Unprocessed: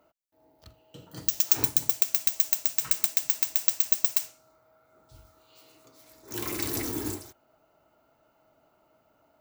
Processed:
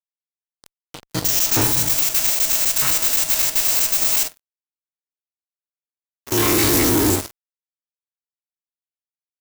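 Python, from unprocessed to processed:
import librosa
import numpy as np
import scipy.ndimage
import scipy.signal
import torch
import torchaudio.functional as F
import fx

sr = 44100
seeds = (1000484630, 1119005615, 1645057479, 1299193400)

y = fx.spec_steps(x, sr, hold_ms=50)
y = fx.rev_schroeder(y, sr, rt60_s=1.3, comb_ms=28, drr_db=16.0)
y = fx.fuzz(y, sr, gain_db=41.0, gate_db=-43.0)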